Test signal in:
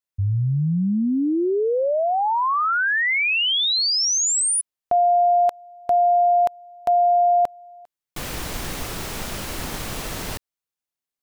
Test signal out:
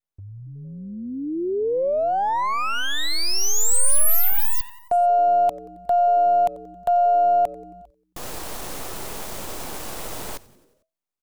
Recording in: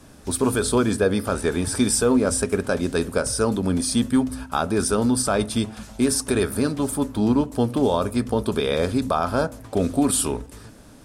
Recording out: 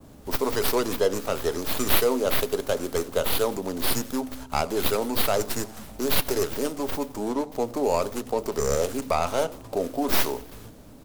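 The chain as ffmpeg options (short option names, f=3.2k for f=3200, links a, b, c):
-filter_complex "[0:a]adynamicequalizer=threshold=0.0112:dfrequency=5000:dqfactor=0.8:tfrequency=5000:tqfactor=0.8:attack=5:release=100:ratio=0.375:range=4:mode=boostabove:tftype=bell,asplit=6[a][b][c][d][e][f];[b]adelay=90,afreqshift=-130,volume=-21dB[g];[c]adelay=180,afreqshift=-260,volume=-25.6dB[h];[d]adelay=270,afreqshift=-390,volume=-30.2dB[i];[e]adelay=360,afreqshift=-520,volume=-34.7dB[j];[f]adelay=450,afreqshift=-650,volume=-39.3dB[k];[a][g][h][i][j][k]amix=inputs=6:normalize=0,acrossover=split=350|1300[l][m][n];[l]acompressor=threshold=-37dB:ratio=12:attack=0.55:release=402:knee=6:detection=peak[o];[n]aeval=exprs='abs(val(0))':c=same[p];[o][m][p]amix=inputs=3:normalize=0"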